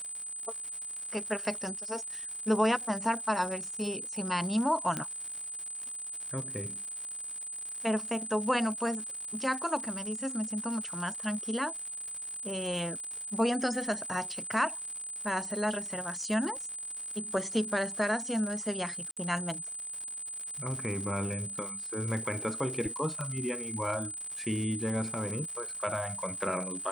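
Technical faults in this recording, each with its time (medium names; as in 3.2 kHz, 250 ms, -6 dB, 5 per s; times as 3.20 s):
crackle 190 per s -38 dBFS
whine 8.1 kHz -37 dBFS
4.97 s: pop -18 dBFS
19.11–19.17 s: dropout 57 ms
23.21 s: pop -24 dBFS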